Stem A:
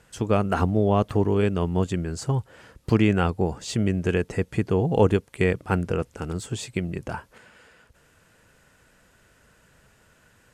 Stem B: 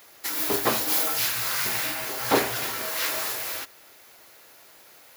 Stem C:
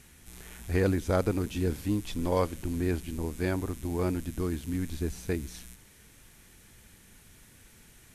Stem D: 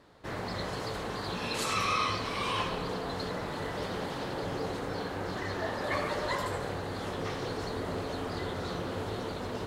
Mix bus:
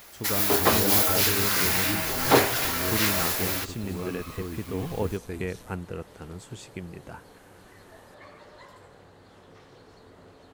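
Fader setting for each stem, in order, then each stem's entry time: −10.5, +2.5, −5.5, −17.0 decibels; 0.00, 0.00, 0.00, 2.30 seconds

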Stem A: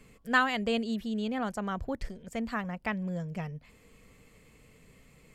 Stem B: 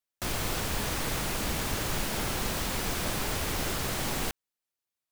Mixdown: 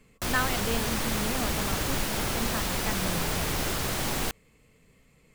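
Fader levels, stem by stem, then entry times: −3.0, +2.0 decibels; 0.00, 0.00 seconds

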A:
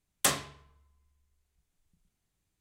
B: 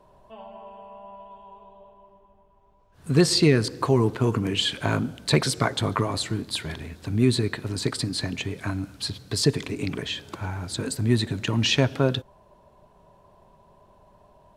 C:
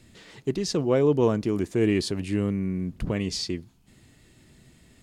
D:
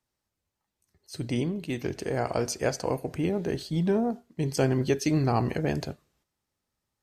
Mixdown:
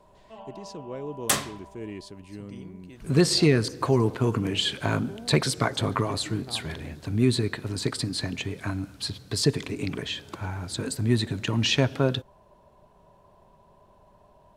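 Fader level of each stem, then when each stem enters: +2.5, −1.5, −15.0, −16.5 decibels; 1.05, 0.00, 0.00, 1.20 seconds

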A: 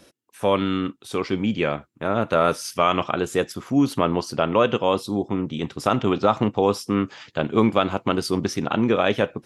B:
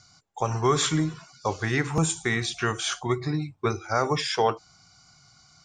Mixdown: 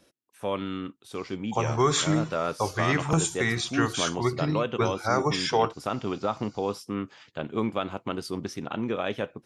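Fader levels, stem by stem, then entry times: −9.5, −0.5 decibels; 0.00, 1.15 seconds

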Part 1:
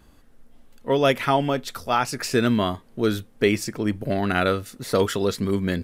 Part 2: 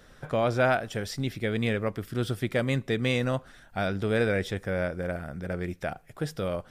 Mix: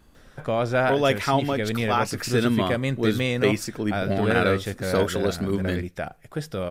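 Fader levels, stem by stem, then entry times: −2.0, +1.5 decibels; 0.00, 0.15 seconds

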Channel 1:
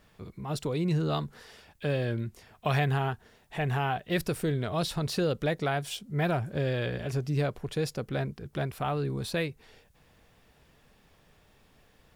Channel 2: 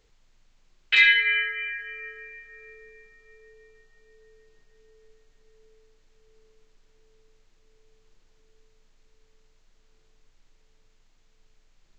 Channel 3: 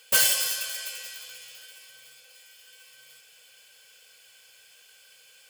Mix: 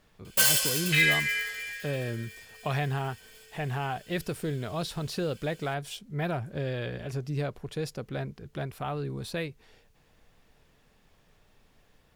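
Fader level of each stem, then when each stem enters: −3.0, −6.0, −1.5 decibels; 0.00, 0.00, 0.25 seconds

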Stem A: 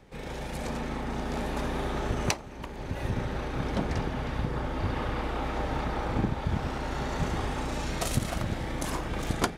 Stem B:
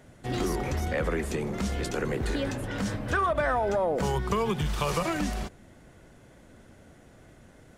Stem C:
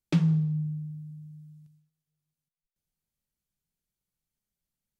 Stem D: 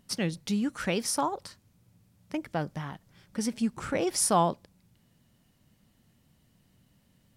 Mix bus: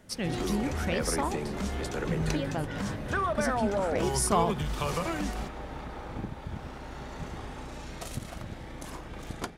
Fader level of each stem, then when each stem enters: −9.0, −3.5, −10.0, −3.0 decibels; 0.00, 0.00, 1.95, 0.00 seconds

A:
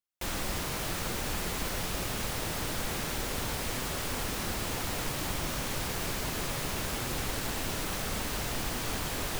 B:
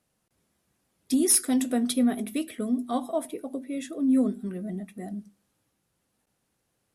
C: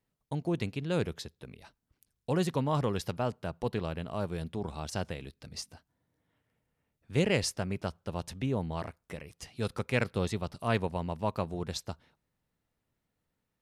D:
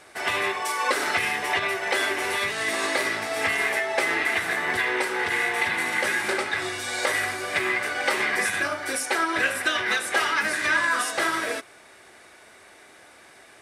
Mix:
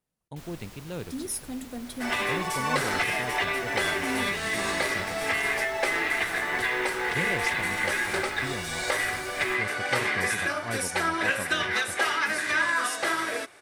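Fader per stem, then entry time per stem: −14.0, −12.0, −6.0, −2.5 decibels; 0.15, 0.00, 0.00, 1.85 seconds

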